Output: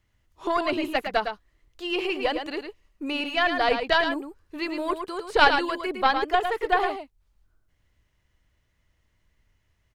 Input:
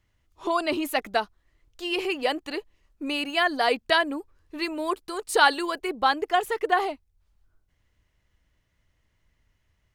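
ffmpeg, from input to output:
-filter_complex "[0:a]aeval=exprs='0.562*(cos(1*acos(clip(val(0)/0.562,-1,1)))-cos(1*PI/2))+0.251*(cos(2*acos(clip(val(0)/0.562,-1,1)))-cos(2*PI/2))':c=same,acrossover=split=4500[a][b];[b]acompressor=threshold=-53dB:ratio=4:attack=1:release=60[c];[a][c]amix=inputs=2:normalize=0,aecho=1:1:109:0.447"

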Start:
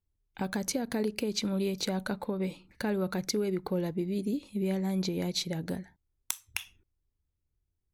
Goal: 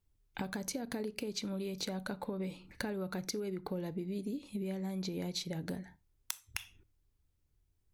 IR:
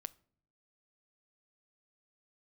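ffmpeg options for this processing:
-filter_complex "[0:a]acompressor=threshold=-41dB:ratio=6[a];[1:a]atrim=start_sample=2205,atrim=end_sample=4410[b];[a][b]afir=irnorm=-1:irlink=0,volume=9dB"

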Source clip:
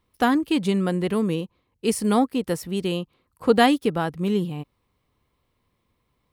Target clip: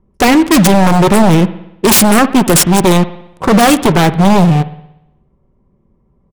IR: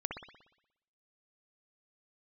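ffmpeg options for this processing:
-filter_complex "[0:a]lowpass=8.4k,aecho=1:1:5.2:0.53,alimiter=limit=-15dB:level=0:latency=1:release=44,aexciter=amount=8:drive=7.8:freq=5.9k,asplit=2[a][b];[b]acrusher=bits=4:mix=0:aa=0.000001,volume=-6dB[c];[a][c]amix=inputs=2:normalize=0,adynamicsmooth=sensitivity=5:basefreq=520,aeval=exprs='0.841*sin(PI/2*7.08*val(0)/0.841)':c=same,asplit=2[d][e];[1:a]atrim=start_sample=2205[f];[e][f]afir=irnorm=-1:irlink=0,volume=-11.5dB[g];[d][g]amix=inputs=2:normalize=0,volume=-4.5dB"

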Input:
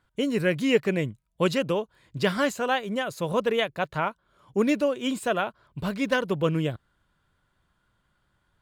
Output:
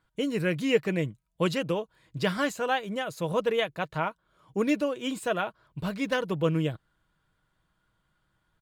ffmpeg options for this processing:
-af "aecho=1:1:6.3:0.31,volume=-3dB"

